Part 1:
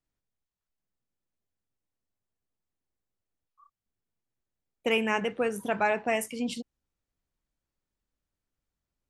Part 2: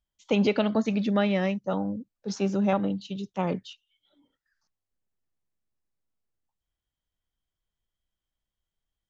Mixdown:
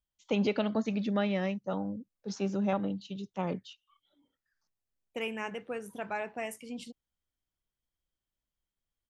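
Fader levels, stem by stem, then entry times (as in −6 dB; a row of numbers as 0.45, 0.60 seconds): −9.5, −5.5 decibels; 0.30, 0.00 seconds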